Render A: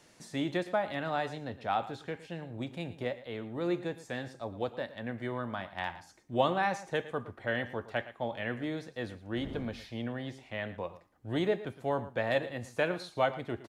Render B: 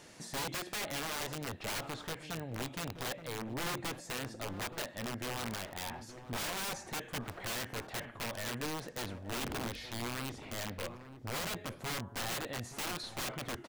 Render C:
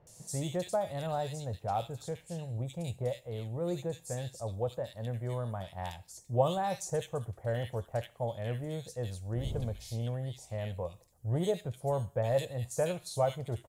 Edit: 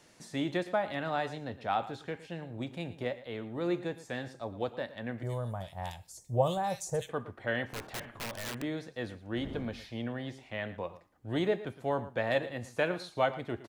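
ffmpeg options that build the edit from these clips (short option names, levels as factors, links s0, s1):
-filter_complex "[0:a]asplit=3[s0][s1][s2];[s0]atrim=end=5.232[s3];[2:a]atrim=start=5.228:end=7.092[s4];[s1]atrim=start=7.088:end=7.662[s5];[1:a]atrim=start=7.658:end=8.622[s6];[s2]atrim=start=8.618[s7];[s3][s4]acrossfade=d=0.004:c1=hsin:c2=hsin[s8];[s8][s5]acrossfade=d=0.004:c1=hsin:c2=hsin[s9];[s9][s6]acrossfade=d=0.004:c1=hsin:c2=hsin[s10];[s10][s7]acrossfade=d=0.004:c1=hsin:c2=hsin"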